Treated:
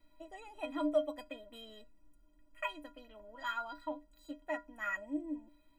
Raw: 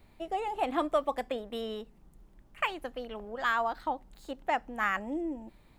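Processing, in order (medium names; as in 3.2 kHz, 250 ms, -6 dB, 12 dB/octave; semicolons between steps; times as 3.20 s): inharmonic resonator 290 Hz, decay 0.23 s, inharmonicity 0.03; trim +5 dB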